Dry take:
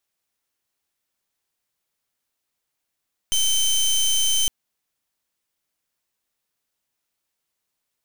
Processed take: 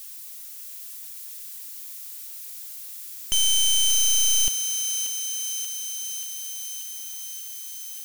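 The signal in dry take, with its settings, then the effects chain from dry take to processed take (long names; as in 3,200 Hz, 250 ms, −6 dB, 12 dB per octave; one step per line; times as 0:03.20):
pulse wave 3,090 Hz, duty 21% −19.5 dBFS 1.16 s
spike at every zero crossing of −36.5 dBFS
on a send: feedback echo with a high-pass in the loop 583 ms, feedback 71%, high-pass 700 Hz, level −6.5 dB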